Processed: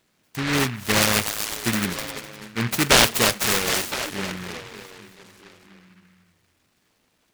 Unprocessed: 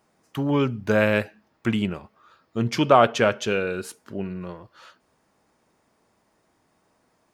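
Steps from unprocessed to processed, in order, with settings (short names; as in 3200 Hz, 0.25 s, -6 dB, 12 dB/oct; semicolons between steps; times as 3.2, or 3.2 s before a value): on a send: delay with a stepping band-pass 0.253 s, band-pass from 2500 Hz, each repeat -0.7 oct, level -3 dB; on the sum: dynamic EQ 3400 Hz, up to +7 dB, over -39 dBFS, Q 0.73; noise-modulated delay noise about 1700 Hz, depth 0.37 ms; gain -1 dB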